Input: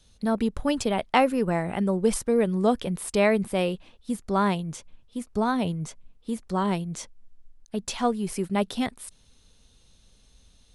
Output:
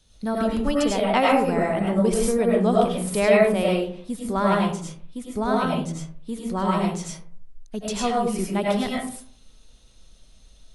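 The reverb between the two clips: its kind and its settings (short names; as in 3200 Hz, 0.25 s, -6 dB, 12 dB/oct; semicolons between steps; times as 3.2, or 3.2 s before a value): digital reverb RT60 0.53 s, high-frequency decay 0.45×, pre-delay 60 ms, DRR -4 dB; gain -1.5 dB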